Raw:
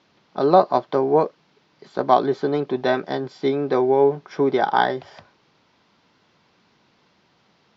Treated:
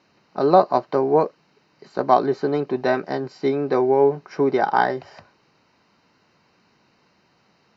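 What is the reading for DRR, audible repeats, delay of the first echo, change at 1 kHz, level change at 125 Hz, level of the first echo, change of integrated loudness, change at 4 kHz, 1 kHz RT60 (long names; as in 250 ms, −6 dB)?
no reverb audible, no echo audible, no echo audible, 0.0 dB, 0.0 dB, no echo audible, 0.0 dB, −4.5 dB, no reverb audible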